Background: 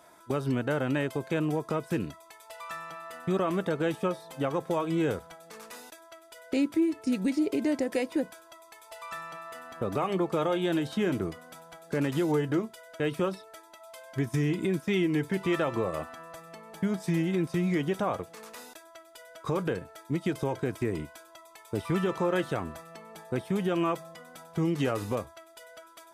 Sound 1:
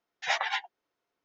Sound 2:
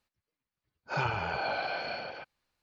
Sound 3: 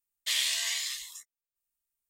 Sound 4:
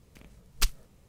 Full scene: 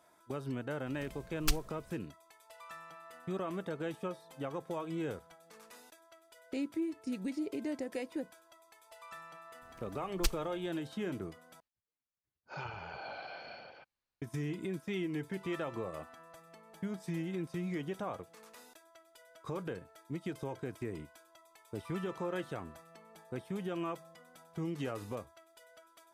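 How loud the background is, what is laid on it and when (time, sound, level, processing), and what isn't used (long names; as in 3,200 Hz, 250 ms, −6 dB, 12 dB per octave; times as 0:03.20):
background −10 dB
0:00.86: mix in 4 + brickwall limiter −14.5 dBFS
0:09.62: mix in 4 −6 dB
0:11.60: overwrite with 2 −12 dB
not used: 1, 3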